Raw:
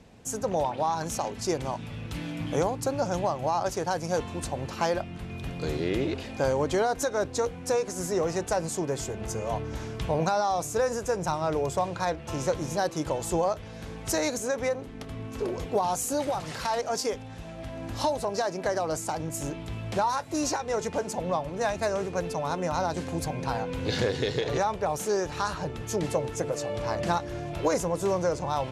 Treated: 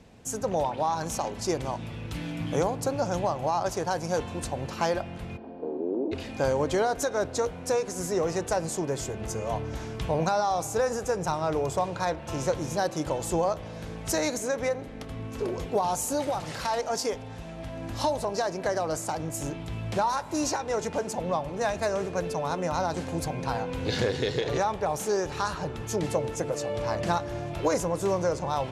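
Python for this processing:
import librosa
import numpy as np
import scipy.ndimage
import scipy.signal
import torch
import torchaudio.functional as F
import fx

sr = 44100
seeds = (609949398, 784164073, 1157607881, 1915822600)

y = fx.ellip_bandpass(x, sr, low_hz=230.0, high_hz=930.0, order=3, stop_db=40, at=(5.36, 6.11), fade=0.02)
y = fx.rev_spring(y, sr, rt60_s=2.8, pass_ms=(36,), chirp_ms=60, drr_db=17.0)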